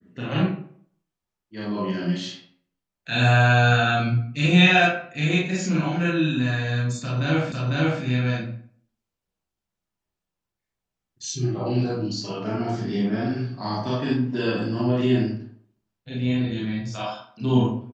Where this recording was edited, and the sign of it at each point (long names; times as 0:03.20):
0:07.52: the same again, the last 0.5 s